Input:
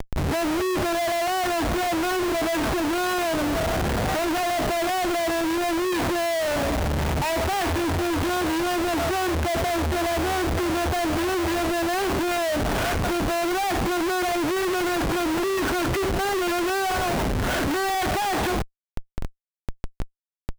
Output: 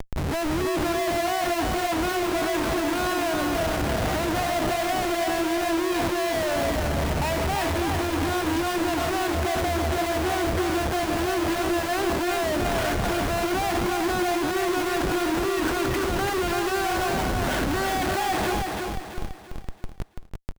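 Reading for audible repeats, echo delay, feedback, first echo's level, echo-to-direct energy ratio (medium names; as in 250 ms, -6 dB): 4, 335 ms, 40%, -4.0 dB, -3.0 dB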